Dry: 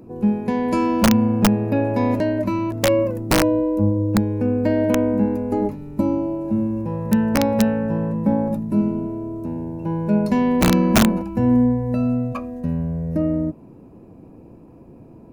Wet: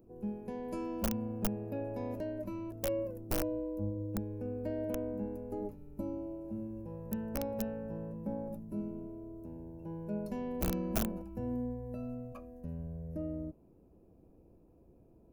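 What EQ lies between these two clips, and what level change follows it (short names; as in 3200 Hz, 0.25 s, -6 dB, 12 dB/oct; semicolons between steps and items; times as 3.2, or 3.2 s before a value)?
graphic EQ 125/250/500/1000/2000/4000/8000 Hz -11/-10/-3/-11/-12/-11/-8 dB; -8.0 dB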